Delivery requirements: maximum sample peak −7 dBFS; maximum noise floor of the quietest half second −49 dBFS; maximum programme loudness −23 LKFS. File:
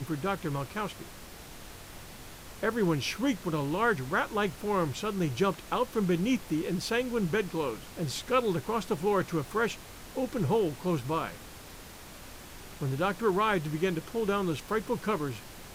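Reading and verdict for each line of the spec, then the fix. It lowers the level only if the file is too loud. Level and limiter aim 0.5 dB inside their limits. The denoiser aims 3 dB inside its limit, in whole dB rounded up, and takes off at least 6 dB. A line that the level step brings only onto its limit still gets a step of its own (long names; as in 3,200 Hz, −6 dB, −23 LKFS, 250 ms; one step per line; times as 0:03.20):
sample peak −13.5 dBFS: in spec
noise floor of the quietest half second −47 dBFS: out of spec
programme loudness −30.5 LKFS: in spec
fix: broadband denoise 6 dB, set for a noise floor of −47 dBFS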